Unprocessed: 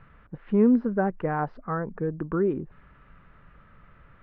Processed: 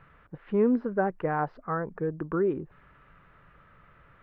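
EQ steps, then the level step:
low-shelf EQ 83 Hz −9 dB
parametric band 220 Hz −6 dB 0.51 octaves
0.0 dB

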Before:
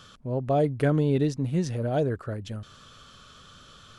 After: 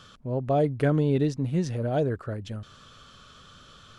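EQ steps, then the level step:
high-shelf EQ 8,300 Hz −6 dB
0.0 dB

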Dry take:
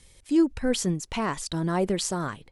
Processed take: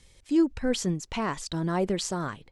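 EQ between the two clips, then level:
parametric band 9,900 Hz −9.5 dB 0.36 octaves
−1.5 dB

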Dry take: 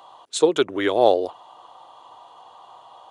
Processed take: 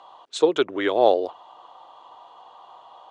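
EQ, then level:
high-pass filter 220 Hz 6 dB per octave
high-frequency loss of the air 95 metres
0.0 dB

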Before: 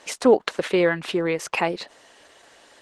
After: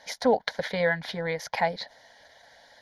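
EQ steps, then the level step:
phaser with its sweep stopped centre 1,800 Hz, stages 8
0.0 dB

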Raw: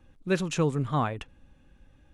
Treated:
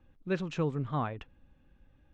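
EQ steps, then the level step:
high-frequency loss of the air 160 metres
−5.0 dB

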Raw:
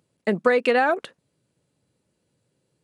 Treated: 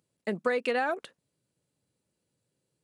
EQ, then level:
high-shelf EQ 4,300 Hz +5.5 dB
−9.0 dB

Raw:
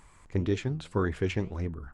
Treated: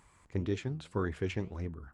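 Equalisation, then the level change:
high-pass filter 45 Hz
−5.0 dB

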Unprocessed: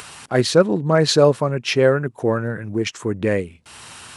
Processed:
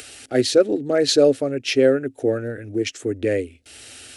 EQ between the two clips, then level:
parametric band 270 Hz +9.5 dB 0.2 octaves
phaser with its sweep stopped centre 420 Hz, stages 4
0.0 dB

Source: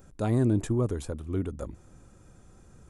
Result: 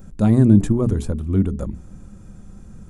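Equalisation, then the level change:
low-shelf EQ 110 Hz +12 dB
parametric band 200 Hz +12 dB 0.54 octaves
mains-hum notches 60/120/180/240/300/360/420 Hz
+4.5 dB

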